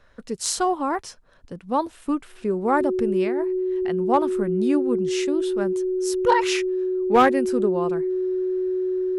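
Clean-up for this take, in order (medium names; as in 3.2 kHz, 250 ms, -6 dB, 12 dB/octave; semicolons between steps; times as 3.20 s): clip repair -9 dBFS; band-stop 370 Hz, Q 30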